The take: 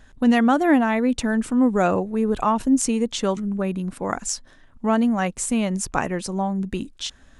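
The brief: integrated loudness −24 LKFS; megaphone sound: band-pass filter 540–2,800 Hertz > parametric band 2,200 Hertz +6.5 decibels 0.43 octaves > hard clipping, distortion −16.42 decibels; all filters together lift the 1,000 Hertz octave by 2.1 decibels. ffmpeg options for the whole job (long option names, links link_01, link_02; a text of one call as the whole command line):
ffmpeg -i in.wav -af "highpass=540,lowpass=2800,equalizer=frequency=1000:width_type=o:gain=3.5,equalizer=frequency=2200:width_type=o:width=0.43:gain=6.5,asoftclip=type=hard:threshold=-13dB,volume=2.5dB" out.wav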